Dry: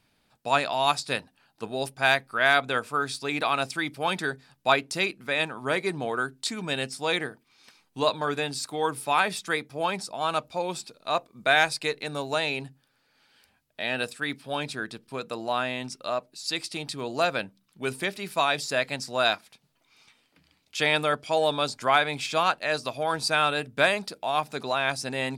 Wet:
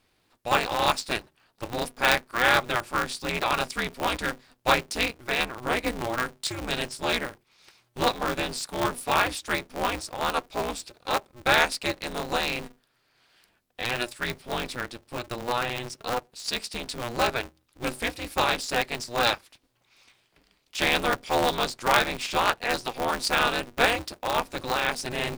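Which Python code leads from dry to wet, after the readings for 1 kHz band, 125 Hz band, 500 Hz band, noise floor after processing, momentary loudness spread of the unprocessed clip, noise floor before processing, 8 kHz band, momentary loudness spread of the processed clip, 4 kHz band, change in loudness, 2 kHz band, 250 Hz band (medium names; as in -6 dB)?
+0.5 dB, +0.5 dB, -1.5 dB, -70 dBFS, 10 LU, -70 dBFS, +2.5 dB, 10 LU, +1.0 dB, 0.0 dB, 0.0 dB, +1.0 dB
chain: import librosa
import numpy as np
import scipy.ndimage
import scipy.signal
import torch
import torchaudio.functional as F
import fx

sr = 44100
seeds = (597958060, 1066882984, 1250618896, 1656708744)

y = x * np.sign(np.sin(2.0 * np.pi * 120.0 * np.arange(len(x)) / sr))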